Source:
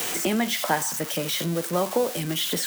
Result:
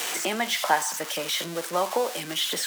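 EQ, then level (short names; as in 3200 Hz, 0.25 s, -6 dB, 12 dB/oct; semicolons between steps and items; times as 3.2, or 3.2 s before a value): weighting filter A; dynamic EQ 880 Hz, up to +4 dB, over -39 dBFS, Q 1.7; 0.0 dB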